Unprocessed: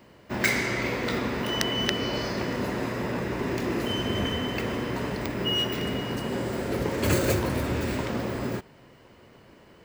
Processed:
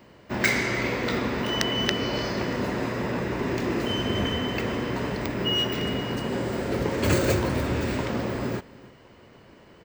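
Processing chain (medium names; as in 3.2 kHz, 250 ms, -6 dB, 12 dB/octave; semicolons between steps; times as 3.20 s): peaking EQ 12 kHz -10 dB 0.55 oct; delay 298 ms -21.5 dB; trim +1.5 dB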